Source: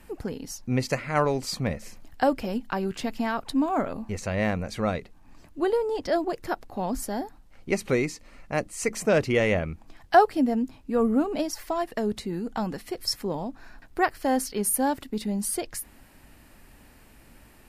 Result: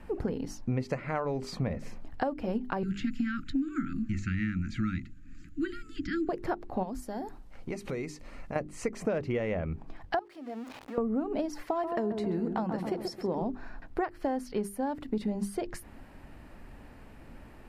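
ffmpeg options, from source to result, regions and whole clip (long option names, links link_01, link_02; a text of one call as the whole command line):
ffmpeg -i in.wav -filter_complex "[0:a]asettb=1/sr,asplit=3[link_01][link_02][link_03];[link_01]atrim=end=2.834[link_04];[link_02]atrim=start=2.83:end=6.29,asetpts=PTS-STARTPTS,afade=type=in:duration=0.004:curve=qsin,afade=type=out:start_time=3.456:duration=0.004:curve=qsin,acrossover=split=4700[link_05][link_06];[link_06]acompressor=threshold=-55dB:ratio=4:attack=1:release=60[link_07];[link_05][link_07]amix=inputs=2:normalize=0,asuperstop=centerf=660:order=20:qfactor=0.69,equalizer=frequency=7000:width=5:gain=13[link_08];[link_03]atrim=start=6.286[link_09];[link_04][link_08]acrossfade=duration=0.004:curve1=hsin:curve2=qsin[link_10];[link_10][link_09]acrossfade=duration=0.004:curve1=qsin:curve2=hsin,asettb=1/sr,asplit=3[link_11][link_12][link_13];[link_11]atrim=end=6.834[link_14];[link_12]atrim=start=6.83:end=8.56,asetpts=PTS-STARTPTS,afade=type=in:duration=0.004:curve=qsin,afade=type=out:start_time=1.726:duration=0.004:curve=qsin,highshelf=frequency=4400:gain=11.5,acompressor=threshold=-37dB:ratio=4:attack=3.2:release=140:knee=1:detection=peak[link_15];[link_13]atrim=start=8.556[link_16];[link_14][link_15]acrossfade=duration=0.004:curve1=hsin:curve2=qsin[link_17];[link_17][link_16]acrossfade=duration=0.004:curve1=qsin:curve2=hsin,asettb=1/sr,asplit=3[link_18][link_19][link_20];[link_18]atrim=end=10.194[link_21];[link_19]atrim=start=10.19:end=10.98,asetpts=PTS-STARTPTS,afade=type=in:duration=0.004:curve=qsin,afade=type=out:start_time=0.786:duration=0.004:curve=qsin,aeval=exprs='val(0)+0.5*0.02*sgn(val(0))':channel_layout=same,highpass=frequency=1200:poles=1,acompressor=threshold=-39dB:ratio=4:attack=3.2:release=140:knee=1:detection=peak[link_22];[link_20]atrim=start=10.976[link_23];[link_21][link_22]acrossfade=duration=0.004:curve1=hsin:curve2=qsin[link_24];[link_24][link_23]acrossfade=duration=0.004:curve1=qsin:curve2=hsin,asettb=1/sr,asplit=3[link_25][link_26][link_27];[link_25]atrim=end=11.624[link_28];[link_26]atrim=start=11.62:end=13.42,asetpts=PTS-STARTPTS,afade=type=in:duration=0.004:curve=qsin,afade=type=out:start_time=1.796:duration=0.004:curve=qsin,highpass=frequency=140:poles=1,asplit=2[link_29][link_30];[link_30]adelay=133,lowpass=frequency=1200:poles=1,volume=-6dB,asplit=2[link_31][link_32];[link_32]adelay=133,lowpass=frequency=1200:poles=1,volume=0.54,asplit=2[link_33][link_34];[link_34]adelay=133,lowpass=frequency=1200:poles=1,volume=0.54,asplit=2[link_35][link_36];[link_36]adelay=133,lowpass=frequency=1200:poles=1,volume=0.54,asplit=2[link_37][link_38];[link_38]adelay=133,lowpass=frequency=1200:poles=1,volume=0.54,asplit=2[link_39][link_40];[link_40]adelay=133,lowpass=frequency=1200:poles=1,volume=0.54,asplit=2[link_41][link_42];[link_42]adelay=133,lowpass=frequency=1200:poles=1,volume=0.54[link_43];[link_29][link_31][link_33][link_35][link_37][link_39][link_41][link_43]amix=inputs=8:normalize=0,atrim=end_sample=79380[link_44];[link_27]atrim=start=13.416[link_45];[link_28][link_44]acrossfade=duration=0.004:curve1=hsin:curve2=qsin[link_46];[link_46][link_45]acrossfade=duration=0.004:curve1=qsin:curve2=hsin,bandreject=frequency=50:width_type=h:width=6,bandreject=frequency=100:width_type=h:width=6,bandreject=frequency=150:width_type=h:width=6,bandreject=frequency=200:width_type=h:width=6,bandreject=frequency=250:width_type=h:width=6,bandreject=frequency=300:width_type=h:width=6,bandreject=frequency=350:width_type=h:width=6,bandreject=frequency=400:width_type=h:width=6,acompressor=threshold=-31dB:ratio=12,lowpass=frequency=1200:poles=1,volume=5dB" out.wav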